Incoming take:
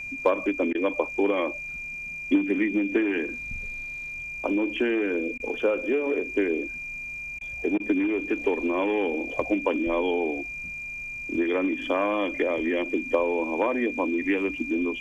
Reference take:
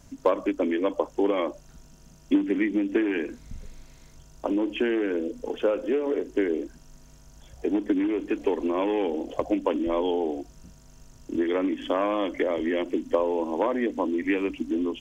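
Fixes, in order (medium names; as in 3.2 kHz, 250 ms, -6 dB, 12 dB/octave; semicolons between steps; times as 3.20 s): band-stop 2.4 kHz, Q 30; interpolate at 0.73/5.38/7.39/7.78 s, 18 ms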